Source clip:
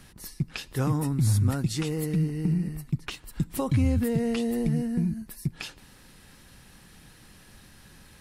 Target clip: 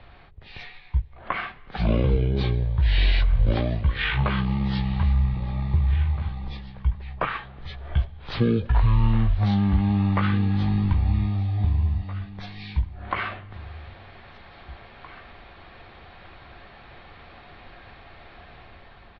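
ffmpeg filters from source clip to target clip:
ffmpeg -i in.wav -filter_complex "[0:a]lowpass=frequency=7900:width=0.5412,lowpass=frequency=7900:width=1.3066,acrossover=split=410[link_01][link_02];[link_02]dynaudnorm=framelen=360:gausssize=3:maxgain=5.5dB[link_03];[link_01][link_03]amix=inputs=2:normalize=0,aecho=1:1:820:0.126,asetrate=18846,aresample=44100,volume=3.5dB" out.wav

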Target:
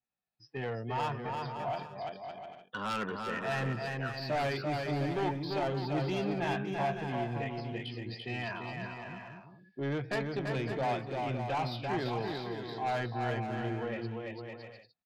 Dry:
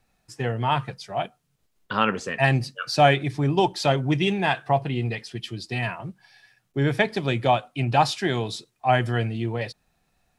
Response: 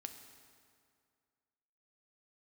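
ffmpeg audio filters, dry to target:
-filter_complex "[0:a]afftdn=noise_reduction=18:noise_floor=-42,highpass=frequency=190:poles=1,aresample=11025,aeval=exprs='0.211*(abs(mod(val(0)/0.211+3,4)-2)-1)':channel_layout=same,aresample=44100,atempo=0.69,asoftclip=type=tanh:threshold=-22.5dB,asplit=2[link_01][link_02];[link_02]aecho=0:1:340|561|704.6|798|858.7:0.631|0.398|0.251|0.158|0.1[link_03];[link_01][link_03]amix=inputs=2:normalize=0,adynamicequalizer=threshold=0.00708:dfrequency=2200:dqfactor=0.7:tfrequency=2200:tqfactor=0.7:attack=5:release=100:ratio=0.375:range=3.5:mode=cutabove:tftype=highshelf,volume=-6dB"

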